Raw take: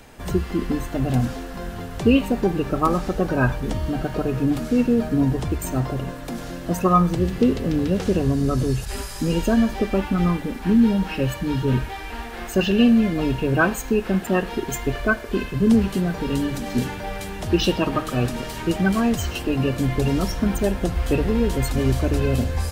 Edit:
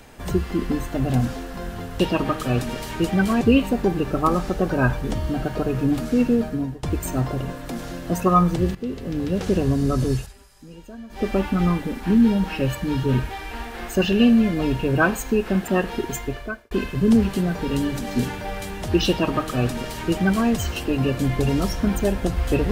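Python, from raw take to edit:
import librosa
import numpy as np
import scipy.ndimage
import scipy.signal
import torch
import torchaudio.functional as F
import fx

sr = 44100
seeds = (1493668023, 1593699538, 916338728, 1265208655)

y = fx.edit(x, sr, fx.fade_out_to(start_s=4.92, length_s=0.5, floor_db=-22.5),
    fx.fade_in_from(start_s=7.34, length_s=0.79, floor_db=-15.5),
    fx.fade_down_up(start_s=8.74, length_s=1.12, db=-20.5, fade_s=0.18),
    fx.fade_out_span(start_s=14.63, length_s=0.67),
    fx.duplicate(start_s=17.67, length_s=1.41, to_s=2.0), tone=tone)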